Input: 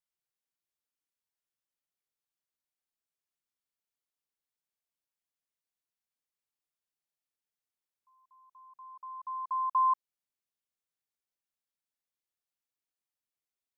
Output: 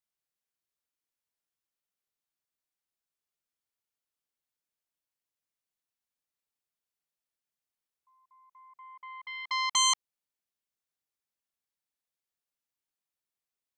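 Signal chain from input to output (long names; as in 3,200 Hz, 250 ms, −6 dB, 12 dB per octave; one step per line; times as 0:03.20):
phase distortion by the signal itself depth 0.98 ms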